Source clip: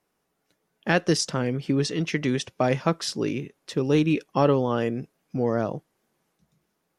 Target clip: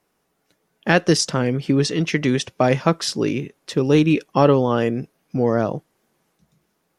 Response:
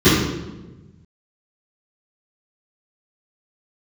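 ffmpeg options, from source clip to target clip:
-filter_complex "[0:a]asettb=1/sr,asplit=3[link_01][link_02][link_03];[link_01]atrim=end=4.904[link_04];[link_02]atrim=start=4.9:end=5.75,asetpts=PTS-STARTPTS,afade=type=in:duration=0.004:curve=qsin,afade=type=out:start_time=0.846:duration=0.004:curve=qsin,bandreject=frequency=7400:width=9.5[link_05];[link_03]atrim=start=5.746[link_06];[link_04][link_05]acrossfade=duration=0.004:curve1=hsin:curve2=qsin[link_07];[link_07][link_06]acrossfade=duration=0.004:curve1=qsin:curve2=hsin,volume=5.5dB"

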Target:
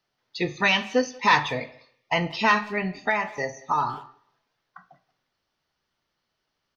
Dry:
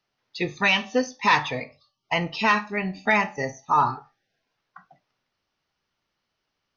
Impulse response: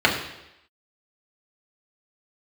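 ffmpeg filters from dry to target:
-filter_complex "[0:a]asplit=2[link_01][link_02];[link_02]adelay=180,highpass=300,lowpass=3400,asoftclip=type=hard:threshold=-18dB,volume=-22dB[link_03];[link_01][link_03]amix=inputs=2:normalize=0,asettb=1/sr,asplit=3[link_04][link_05][link_06];[link_04]atrim=end=3.044[link_07];[link_05]atrim=start=3.04:end=3.94,asetpts=PTS-STARTPTS,afade=type=in:duration=0.004:curve=qsin,afade=type=out:start_time=0.896:duration=0.004:curve=qsin,acrossover=split=400|2800[link_08][link_09][link_10];[link_08]acompressor=threshold=-38dB:ratio=4[link_11];[link_09]acompressor=threshold=-22dB:ratio=4[link_12];[link_10]acompressor=threshold=-41dB:ratio=4[link_13];[link_11][link_12][link_13]amix=inputs=3:normalize=0[link_14];[link_06]atrim=start=3.936[link_15];[link_07][link_14]acrossfade=duration=0.004:curve1=hsin:curve2=qsin[link_16];[link_16][link_15]acrossfade=duration=0.004:curve1=qsin:curve2=hsin,asplit=2[link_17][link_18];[1:a]atrim=start_sample=2205,highshelf=frequency=3800:gain=10[link_19];[link_18][link_19]afir=irnorm=-1:irlink=0,volume=-35dB[link_20];[link_17][link_20]amix=inputs=2:normalize=0"

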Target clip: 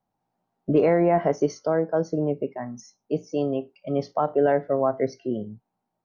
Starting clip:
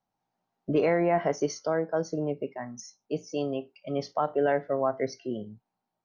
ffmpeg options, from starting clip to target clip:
ffmpeg -i in.wav -af "tiltshelf=frequency=1400:gain=5,volume=1dB" out.wav

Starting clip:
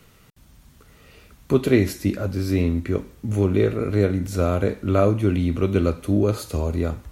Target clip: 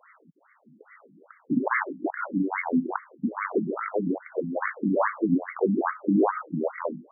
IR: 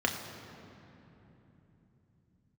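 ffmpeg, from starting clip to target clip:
-af "lowpass=frequency=2800:width_type=q:width=12,aeval=exprs='0.15*(abs(mod(val(0)/0.15+3,4)-2)-1)':channel_layout=same,afftfilt=real='re*between(b*sr/1024,210*pow(1600/210,0.5+0.5*sin(2*PI*2.4*pts/sr))/1.41,210*pow(1600/210,0.5+0.5*sin(2*PI*2.4*pts/sr))*1.41)':imag='im*between(b*sr/1024,210*pow(1600/210,0.5+0.5*sin(2*PI*2.4*pts/sr))/1.41,210*pow(1600/210,0.5+0.5*sin(2*PI*2.4*pts/sr))*1.41)':win_size=1024:overlap=0.75,volume=6dB"

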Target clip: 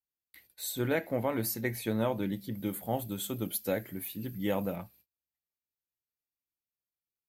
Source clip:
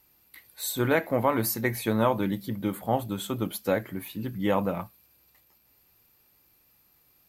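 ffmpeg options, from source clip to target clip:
ffmpeg -i in.wav -filter_complex "[0:a]equalizer=frequency=1100:width=2:gain=-8.5,agate=range=-30dB:threshold=-55dB:ratio=16:detection=peak,asettb=1/sr,asplit=3[link_01][link_02][link_03];[link_01]atrim=end=2.554[link_04];[link_02]atrim=start=2.55:end=4.76,asetpts=PTS-STARTPTS,afade=type=in:duration=0.004:curve=qsin,afade=type=out:start_time=2.206:duration=0.004:curve=qsin,highshelf=frequency=7700:gain=10.5[link_05];[link_03]atrim=start=4.756[link_06];[link_04][link_05]acrossfade=duration=0.004:curve1=hsin:curve2=qsin[link_07];[link_07][link_06]acrossfade=duration=0.004:curve1=qsin:curve2=hsin,volume=-5dB" out.wav

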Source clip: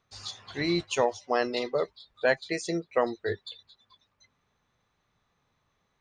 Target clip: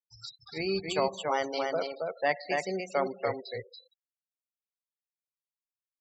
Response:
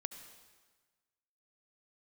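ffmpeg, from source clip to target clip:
-filter_complex "[0:a]aecho=1:1:284:0.668,asplit=2[link_01][link_02];[1:a]atrim=start_sample=2205[link_03];[link_02][link_03]afir=irnorm=-1:irlink=0,volume=-2.5dB[link_04];[link_01][link_04]amix=inputs=2:normalize=0,acrossover=split=7400[link_05][link_06];[link_06]acompressor=threshold=-51dB:ratio=4:attack=1:release=60[link_07];[link_05][link_07]amix=inputs=2:normalize=0,asetrate=49501,aresample=44100,atempo=0.890899,afftfilt=real='re*gte(hypot(re,im),0.0251)':imag='im*gte(hypot(re,im),0.0251)':win_size=1024:overlap=0.75,volume=-7.5dB"

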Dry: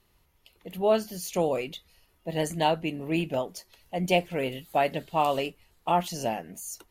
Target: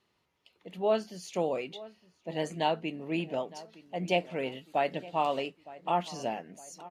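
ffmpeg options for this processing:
ffmpeg -i in.wav -filter_complex "[0:a]highpass=160,lowpass=5900,asplit=2[link_01][link_02];[link_02]adelay=912,lowpass=frequency=2100:poles=1,volume=-18.5dB,asplit=2[link_03][link_04];[link_04]adelay=912,lowpass=frequency=2100:poles=1,volume=0.52,asplit=2[link_05][link_06];[link_06]adelay=912,lowpass=frequency=2100:poles=1,volume=0.52,asplit=2[link_07][link_08];[link_08]adelay=912,lowpass=frequency=2100:poles=1,volume=0.52[link_09];[link_01][link_03][link_05][link_07][link_09]amix=inputs=5:normalize=0,volume=-4dB" out.wav

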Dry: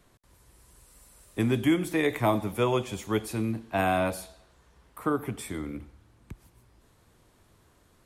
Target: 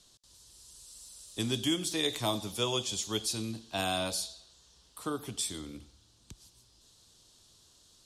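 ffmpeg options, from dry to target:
ffmpeg -i in.wav -af "lowpass=4900,aexciter=amount=11.9:drive=7.2:freq=3300,volume=-8dB" out.wav

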